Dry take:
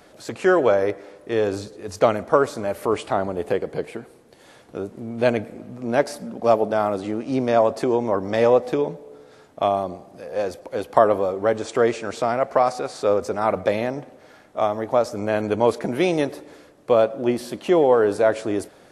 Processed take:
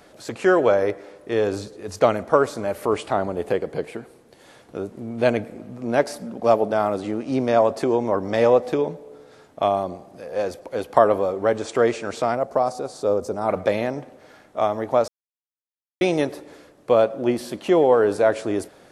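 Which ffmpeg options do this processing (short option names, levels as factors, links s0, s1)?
-filter_complex "[0:a]asettb=1/sr,asplit=3[s0][s1][s2];[s0]atrim=end=12.354[s3];[s1]atrim=start=12.35:end=13.49,asetpts=PTS-STARTPTS,afade=t=in:d=0.004:c=qsin,afade=t=out:st=1.136:d=0.004:c=qsin,equalizer=f=2100:w=0.81:g=-12.5[s4];[s2]atrim=start=13.486[s5];[s3][s4]acrossfade=d=0.004:c1=hsin:c2=qsin[s6];[s6][s5]acrossfade=d=0.004:c1=qsin:c2=hsin,asplit=3[s7][s8][s9];[s7]atrim=end=15.08,asetpts=PTS-STARTPTS,afade=t=out:st=15.076:d=0.004:c=hsin[s10];[s8]atrim=start=15.08:end=16.01,asetpts=PTS-STARTPTS,volume=0[s11];[s9]atrim=start=16.01,asetpts=PTS-STARTPTS,afade=t=in:d=0.004:c=hsin[s12];[s10][s11][s12]concat=n=3:v=0:a=1"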